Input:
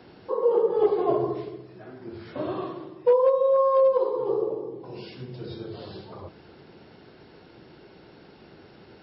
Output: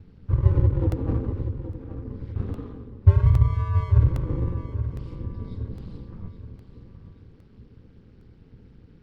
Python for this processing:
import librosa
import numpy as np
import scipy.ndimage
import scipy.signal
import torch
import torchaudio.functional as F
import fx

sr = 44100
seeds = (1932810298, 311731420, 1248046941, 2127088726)

p1 = fx.lower_of_two(x, sr, delay_ms=2.7)
p2 = fx.tilt_eq(p1, sr, slope=-4.5)
p3 = p2 + fx.echo_feedback(p2, sr, ms=823, feedback_pct=41, wet_db=-11.0, dry=0)
p4 = p3 * np.sin(2.0 * np.pi * 92.0 * np.arange(len(p3)) / sr)
p5 = fx.peak_eq(p4, sr, hz=670.0, db=-14.5, octaves=1.7)
p6 = fx.buffer_crackle(p5, sr, first_s=0.92, period_s=0.81, block=64, kind='repeat')
y = p6 * 10.0 ** (-3.0 / 20.0)